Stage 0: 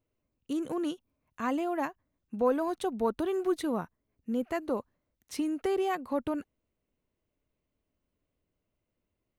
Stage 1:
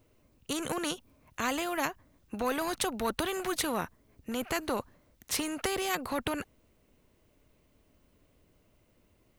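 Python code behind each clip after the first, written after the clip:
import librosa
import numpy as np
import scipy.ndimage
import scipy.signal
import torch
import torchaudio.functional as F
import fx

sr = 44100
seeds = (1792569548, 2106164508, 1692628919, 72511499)

y = fx.spectral_comp(x, sr, ratio=2.0)
y = F.gain(torch.from_numpy(y), 2.0).numpy()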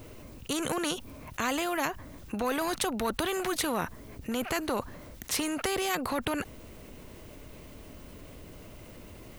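y = fx.env_flatten(x, sr, amount_pct=50)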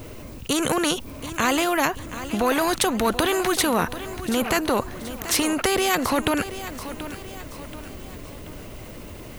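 y = fx.echo_feedback(x, sr, ms=732, feedback_pct=46, wet_db=-13.0)
y = F.gain(torch.from_numpy(y), 8.5).numpy()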